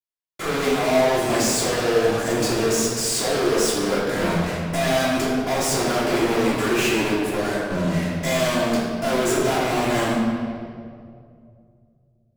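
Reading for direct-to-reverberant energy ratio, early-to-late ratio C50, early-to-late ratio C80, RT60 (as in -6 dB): -8.0 dB, -0.5 dB, 1.5 dB, 2.4 s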